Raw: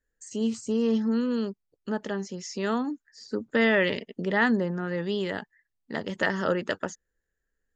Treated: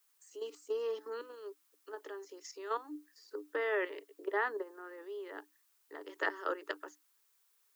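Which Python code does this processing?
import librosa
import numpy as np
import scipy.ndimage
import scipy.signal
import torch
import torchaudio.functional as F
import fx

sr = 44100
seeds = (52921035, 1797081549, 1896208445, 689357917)

y = fx.lowpass(x, sr, hz=1900.0, slope=6, at=(3.44, 6.03))
y = fx.level_steps(y, sr, step_db=13)
y = fx.dmg_noise_colour(y, sr, seeds[0], colour='blue', level_db=-64.0)
y = scipy.signal.sosfilt(scipy.signal.cheby1(6, 9, 290.0, 'highpass', fs=sr, output='sos'), y)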